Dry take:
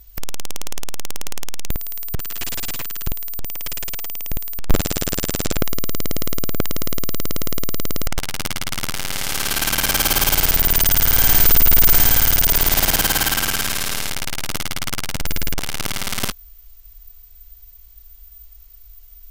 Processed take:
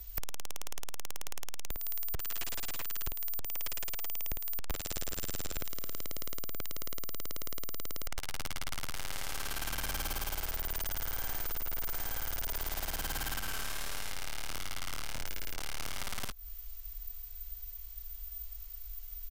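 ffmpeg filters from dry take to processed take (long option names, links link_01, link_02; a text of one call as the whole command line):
ffmpeg -i in.wav -filter_complex "[0:a]asplit=2[link_01][link_02];[link_02]afade=type=in:start_time=4.62:duration=0.01,afade=type=out:start_time=5.29:duration=0.01,aecho=0:1:370|740|1110|1480:0.251189|0.100475|0.0401902|0.0160761[link_03];[link_01][link_03]amix=inputs=2:normalize=0,asettb=1/sr,asplit=3[link_04][link_05][link_06];[link_04]atrim=end=13.404[link_07];[link_05]atrim=start=13.4:end=16,asetpts=PTS-STARTPTS,afade=type=in:duration=0.004:curve=qsin,afade=type=out:start_time=2.596:duration=0.004:curve=qsin,flanger=delay=19.5:depth=7.3:speed=1.5[link_08];[link_06]atrim=start=15.996[link_09];[link_07][link_08]acrossfade=duration=0.004:curve1=hsin:curve2=qsin[link_10];[link_10][link_09]acrossfade=duration=0.004:curve1=qsin:curve2=hsin,acrossover=split=250|1600[link_11][link_12][link_13];[link_11]acompressor=threshold=-25dB:ratio=4[link_14];[link_12]acompressor=threshold=-33dB:ratio=4[link_15];[link_13]acompressor=threshold=-30dB:ratio=4[link_16];[link_14][link_15][link_16]amix=inputs=3:normalize=0,equalizer=frequency=180:width_type=o:width=2.2:gain=-8,acompressor=threshold=-32dB:ratio=6" out.wav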